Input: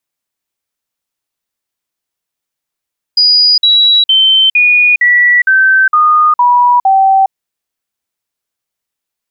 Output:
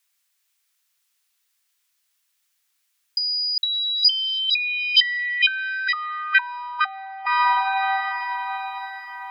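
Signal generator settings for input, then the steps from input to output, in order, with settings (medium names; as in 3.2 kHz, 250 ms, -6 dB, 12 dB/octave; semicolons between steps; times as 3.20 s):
stepped sine 4.91 kHz down, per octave 3, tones 9, 0.41 s, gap 0.05 s -4.5 dBFS
echo that smears into a reverb 754 ms, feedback 41%, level -14 dB; compressor with a negative ratio -16 dBFS, ratio -0.5; high-pass 1.5 kHz 12 dB/octave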